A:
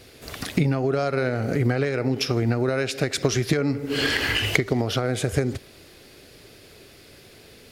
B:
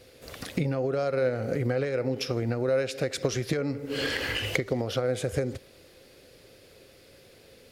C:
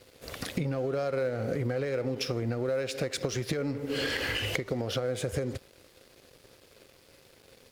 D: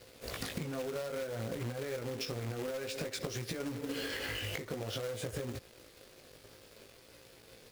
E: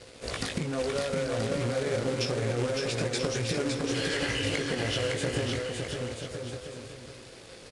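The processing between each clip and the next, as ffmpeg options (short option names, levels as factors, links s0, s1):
-af "equalizer=f=520:t=o:w=0.2:g=12,volume=0.447"
-filter_complex "[0:a]asplit=2[s0][s1];[s1]asoftclip=type=hard:threshold=0.0376,volume=0.447[s2];[s0][s2]amix=inputs=2:normalize=0,acompressor=threshold=0.0398:ratio=3,aeval=exprs='sgn(val(0))*max(abs(val(0))-0.00237,0)':c=same"
-af "flanger=delay=17:depth=2.5:speed=0.55,acompressor=threshold=0.0126:ratio=16,acrusher=bits=2:mode=log:mix=0:aa=0.000001,volume=1.41"
-af "aecho=1:1:560|980|1295|1531|1708:0.631|0.398|0.251|0.158|0.1,aresample=22050,aresample=44100,volume=2.24"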